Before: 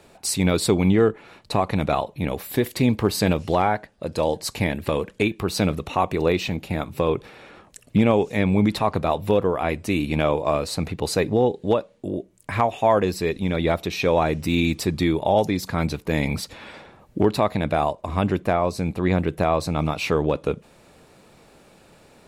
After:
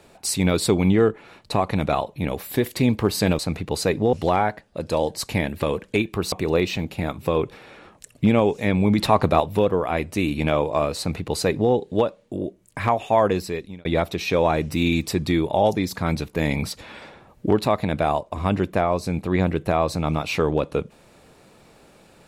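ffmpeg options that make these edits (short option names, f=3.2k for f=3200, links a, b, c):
-filter_complex "[0:a]asplit=7[a][b][c][d][e][f][g];[a]atrim=end=3.392[h];[b]atrim=start=10.698:end=11.442[i];[c]atrim=start=3.388:end=5.582[j];[d]atrim=start=6.038:end=8.702[k];[e]atrim=start=8.698:end=9.122,asetpts=PTS-STARTPTS,volume=4.5dB[l];[f]atrim=start=9.118:end=13.57,asetpts=PTS-STARTPTS,afade=t=out:st=3.932:d=0.52[m];[g]atrim=start=13.57,asetpts=PTS-STARTPTS,afade=t=in:d=0.004:c=hsin[n];[h][i]acrossfade=d=0.004:c1=hsin:c2=hsin[o];[o][j]acrossfade=d=0.004:c1=hsin:c2=hsin[p];[p][k]acrossfade=d=0.004:c1=hsin:c2=hsin[q];[q][l]acrossfade=d=0.004:c1=hsin:c2=hsin[r];[m][n]concat=n=2:v=0:a=1[s];[r][s]acrossfade=d=0.004:c1=hsin:c2=hsin"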